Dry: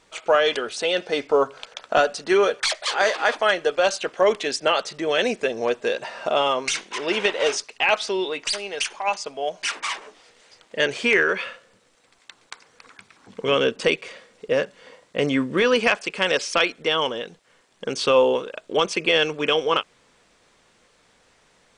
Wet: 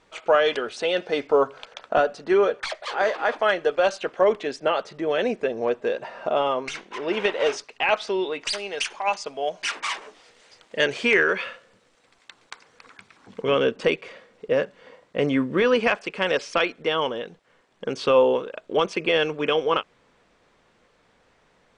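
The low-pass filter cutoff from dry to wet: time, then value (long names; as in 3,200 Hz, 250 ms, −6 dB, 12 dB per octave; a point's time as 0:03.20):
low-pass filter 6 dB per octave
2,700 Hz
from 0:01.89 1,200 Hz
from 0:03.36 2,000 Hz
from 0:04.24 1,200 Hz
from 0:07.17 2,200 Hz
from 0:08.41 5,200 Hz
from 0:09.86 8,600 Hz
from 0:10.84 4,900 Hz
from 0:13.42 2,000 Hz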